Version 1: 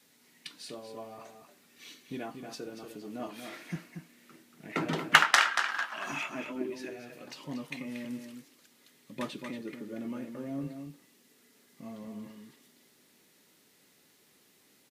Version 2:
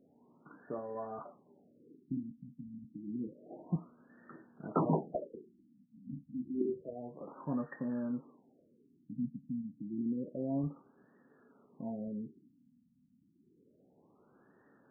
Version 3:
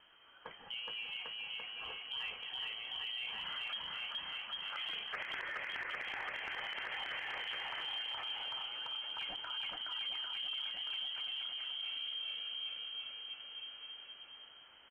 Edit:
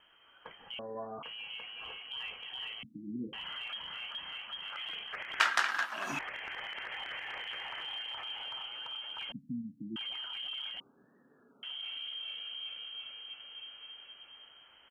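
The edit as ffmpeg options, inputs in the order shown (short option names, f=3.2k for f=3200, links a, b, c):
-filter_complex "[1:a]asplit=4[a][b][c][d];[2:a]asplit=6[e][f][g][h][i][j];[e]atrim=end=0.792[k];[a]atrim=start=0.788:end=1.232[l];[f]atrim=start=1.228:end=2.832[m];[b]atrim=start=2.828:end=3.332[n];[g]atrim=start=3.328:end=5.402[o];[0:a]atrim=start=5.398:end=6.192[p];[h]atrim=start=6.188:end=9.322[q];[c]atrim=start=9.318:end=9.962[r];[i]atrim=start=9.958:end=10.802[s];[d]atrim=start=10.798:end=11.632[t];[j]atrim=start=11.628[u];[k][l]acrossfade=d=0.004:c1=hsin:c2=hsin[v];[v][m]acrossfade=d=0.004:c1=hsin:c2=hsin[w];[w][n]acrossfade=d=0.004:c1=hsin:c2=hsin[x];[x][o]acrossfade=d=0.004:c1=hsin:c2=hsin[y];[y][p]acrossfade=d=0.004:c1=hsin:c2=hsin[z];[z][q]acrossfade=d=0.004:c1=hsin:c2=hsin[aa];[aa][r]acrossfade=d=0.004:c1=hsin:c2=hsin[ab];[ab][s]acrossfade=d=0.004:c1=hsin:c2=hsin[ac];[ac][t]acrossfade=d=0.004:c1=hsin:c2=hsin[ad];[ad][u]acrossfade=d=0.004:c1=hsin:c2=hsin"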